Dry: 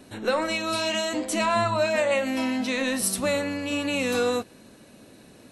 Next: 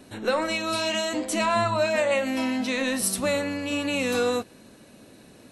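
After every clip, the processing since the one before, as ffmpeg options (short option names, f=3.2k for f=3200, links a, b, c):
-af anull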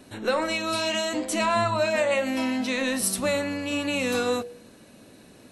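-af "bandreject=f=69.09:t=h:w=4,bandreject=f=138.18:t=h:w=4,bandreject=f=207.27:t=h:w=4,bandreject=f=276.36:t=h:w=4,bandreject=f=345.45:t=h:w=4,bandreject=f=414.54:t=h:w=4,bandreject=f=483.63:t=h:w=4,bandreject=f=552.72:t=h:w=4,bandreject=f=621.81:t=h:w=4,bandreject=f=690.9:t=h:w=4,bandreject=f=759.99:t=h:w=4,bandreject=f=829.08:t=h:w=4,bandreject=f=898.17:t=h:w=4"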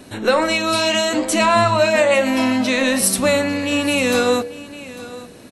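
-af "aecho=1:1:849:0.141,volume=8.5dB"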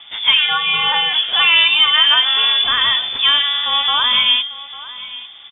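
-af "lowpass=f=3.1k:t=q:w=0.5098,lowpass=f=3.1k:t=q:w=0.6013,lowpass=f=3.1k:t=q:w=0.9,lowpass=f=3.1k:t=q:w=2.563,afreqshift=-3700,volume=2.5dB"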